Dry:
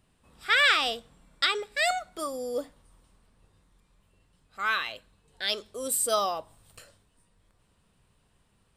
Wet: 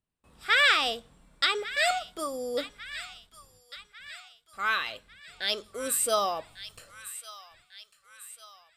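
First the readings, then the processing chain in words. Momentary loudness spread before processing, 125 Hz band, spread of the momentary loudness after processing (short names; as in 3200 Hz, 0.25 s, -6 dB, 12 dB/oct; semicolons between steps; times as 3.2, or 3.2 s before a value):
15 LU, -0.5 dB, 23 LU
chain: gate with hold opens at -54 dBFS; on a send: thin delay 1.148 s, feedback 51%, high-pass 1500 Hz, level -13 dB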